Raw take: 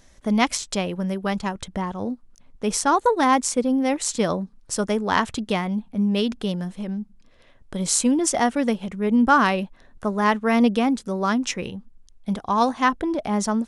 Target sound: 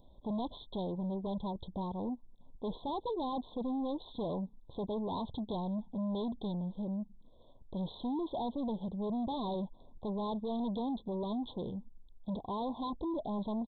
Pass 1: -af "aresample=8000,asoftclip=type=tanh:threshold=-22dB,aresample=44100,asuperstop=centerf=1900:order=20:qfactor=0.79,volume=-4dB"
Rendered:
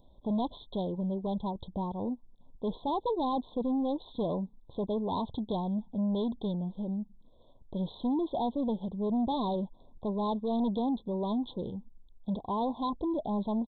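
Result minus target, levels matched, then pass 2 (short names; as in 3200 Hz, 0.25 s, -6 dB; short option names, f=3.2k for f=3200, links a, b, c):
soft clip: distortion -4 dB
-af "aresample=8000,asoftclip=type=tanh:threshold=-29dB,aresample=44100,asuperstop=centerf=1900:order=20:qfactor=0.79,volume=-4dB"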